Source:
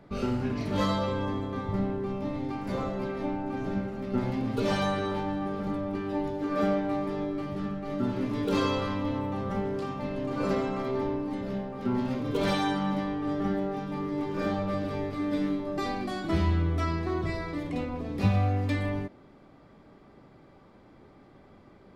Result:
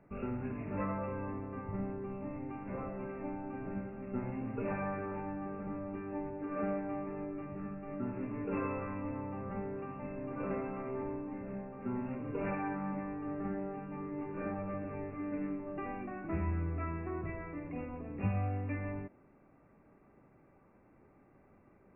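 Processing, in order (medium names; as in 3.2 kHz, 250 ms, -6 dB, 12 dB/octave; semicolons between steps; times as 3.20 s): brick-wall FIR low-pass 2.8 kHz; trim -9 dB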